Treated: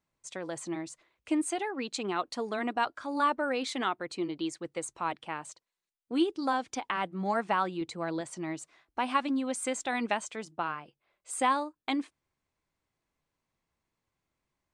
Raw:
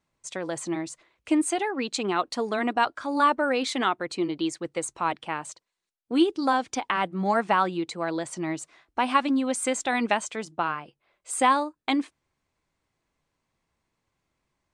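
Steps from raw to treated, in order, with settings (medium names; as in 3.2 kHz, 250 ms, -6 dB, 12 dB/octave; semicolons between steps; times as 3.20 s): 7.81–8.21 s: bass shelf 160 Hz +9.5 dB; trim -6 dB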